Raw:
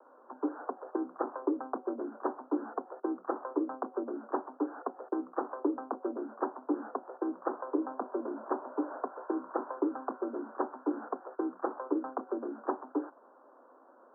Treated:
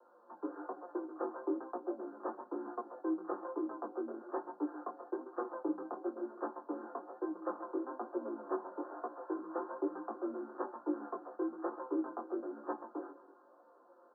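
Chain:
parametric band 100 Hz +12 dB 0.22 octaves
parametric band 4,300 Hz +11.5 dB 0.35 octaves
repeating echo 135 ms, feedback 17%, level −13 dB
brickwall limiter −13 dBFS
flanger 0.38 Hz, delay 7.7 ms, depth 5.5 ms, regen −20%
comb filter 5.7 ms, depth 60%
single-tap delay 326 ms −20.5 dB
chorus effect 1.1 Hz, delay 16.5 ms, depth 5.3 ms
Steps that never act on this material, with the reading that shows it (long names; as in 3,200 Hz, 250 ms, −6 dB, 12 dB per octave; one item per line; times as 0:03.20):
parametric band 100 Hz: nothing at its input below 200 Hz
parametric band 4,300 Hz: nothing at its input above 1,600 Hz
brickwall limiter −13 dBFS: peak of its input −16.5 dBFS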